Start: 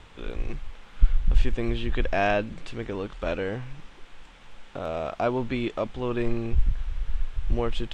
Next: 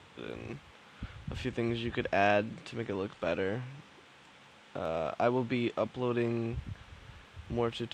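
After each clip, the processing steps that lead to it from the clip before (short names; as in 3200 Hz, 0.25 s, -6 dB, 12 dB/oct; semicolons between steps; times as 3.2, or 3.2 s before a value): HPF 91 Hz 24 dB/oct; gain -3 dB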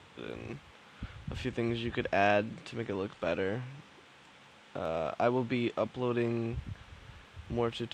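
nothing audible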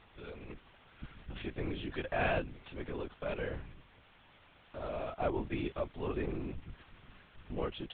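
LPC vocoder at 8 kHz whisper; gain -5 dB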